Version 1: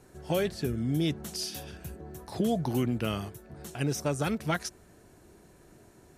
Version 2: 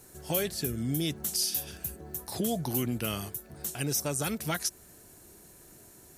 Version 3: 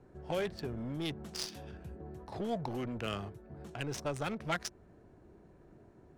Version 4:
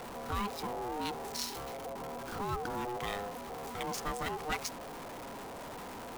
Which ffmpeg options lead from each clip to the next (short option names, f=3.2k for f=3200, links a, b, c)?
-filter_complex "[0:a]aemphasis=mode=production:type=75fm,asplit=2[a][b];[b]alimiter=limit=-22.5dB:level=0:latency=1:release=158,volume=-2.5dB[c];[a][c]amix=inputs=2:normalize=0,volume=-5.5dB"
-filter_complex "[0:a]acrossover=split=420|3500[a][b][c];[a]asoftclip=type=tanh:threshold=-38dB[d];[d][b][c]amix=inputs=3:normalize=0,adynamicsmooth=sensitivity=3.5:basefreq=1.2k"
-af "aeval=exprs='val(0)+0.5*0.015*sgn(val(0))':c=same,aeval=exprs='val(0)*sin(2*PI*610*n/s)':c=same,crystalizer=i=0.5:c=0"